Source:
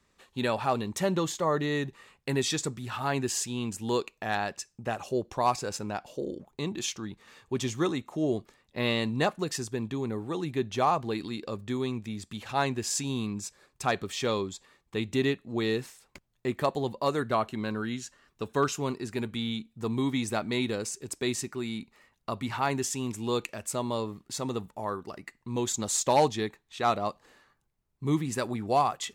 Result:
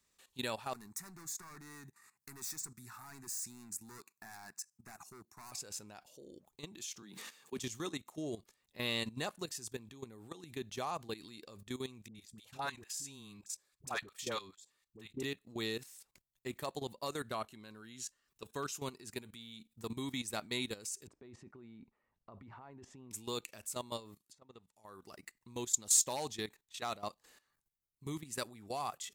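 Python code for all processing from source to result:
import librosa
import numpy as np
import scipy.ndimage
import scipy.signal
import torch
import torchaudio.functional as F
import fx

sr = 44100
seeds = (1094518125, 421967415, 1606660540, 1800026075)

y = fx.chain(x, sr, fx.highpass(hz=130.0, slope=12),
    fx.overload_stage(gain_db=30.5),
    fx.fixed_phaser(hz=1300.0, stages=4), at=(0.73, 5.52))
y = fx.chain(y, sr, fx.steep_highpass(hz=160.0, slope=36),
    fx.sustainer(db_per_s=39.0), at=(7.02, 7.59))
y = fx.chain(y, sr, fx.dynamic_eq(hz=1300.0, q=0.94, threshold_db=-42.0, ratio=4.0, max_db=6),
    fx.level_steps(step_db=13),
    fx.dispersion(late='highs', ms=69.0, hz=650.0), at=(12.08, 15.23))
y = fx.chain(y, sr, fx.lowpass(hz=1100.0, slope=12),
    fx.over_compress(threshold_db=-37.0, ratio=-1.0), at=(21.07, 23.11))
y = fx.chain(y, sr, fx.pre_emphasis(coefficient=0.8),
    fx.env_lowpass_down(base_hz=1200.0, full_db=-38.0), at=(24.15, 24.85))
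y = fx.level_steps(y, sr, step_db=15)
y = librosa.effects.preemphasis(y, coef=0.8, zi=[0.0])
y = y * 10.0 ** (5.0 / 20.0)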